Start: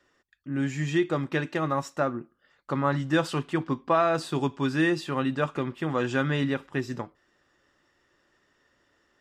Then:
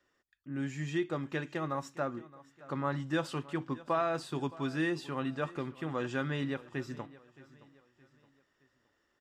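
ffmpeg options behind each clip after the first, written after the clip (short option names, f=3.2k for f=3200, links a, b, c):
-af "aecho=1:1:619|1238|1857:0.106|0.0434|0.0178,volume=-8dB"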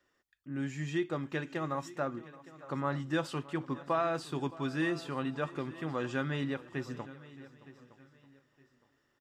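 -af "aecho=1:1:914|1828:0.119|0.0309"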